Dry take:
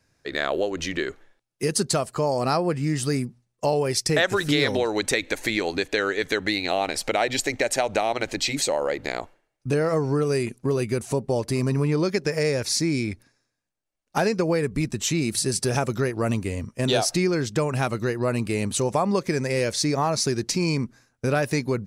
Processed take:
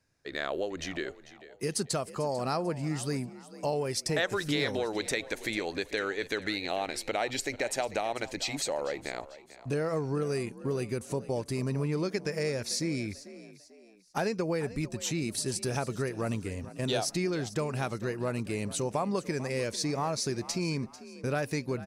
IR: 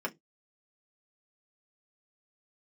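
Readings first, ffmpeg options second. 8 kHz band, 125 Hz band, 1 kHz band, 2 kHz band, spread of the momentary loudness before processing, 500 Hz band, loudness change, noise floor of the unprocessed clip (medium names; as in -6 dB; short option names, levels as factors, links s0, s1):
-8.0 dB, -8.0 dB, -8.0 dB, -8.0 dB, 6 LU, -8.0 dB, -8.0 dB, -77 dBFS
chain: -filter_complex "[0:a]asplit=4[s0][s1][s2][s3];[s1]adelay=444,afreqshift=47,volume=0.15[s4];[s2]adelay=888,afreqshift=94,volume=0.0569[s5];[s3]adelay=1332,afreqshift=141,volume=0.0216[s6];[s0][s4][s5][s6]amix=inputs=4:normalize=0,volume=0.398"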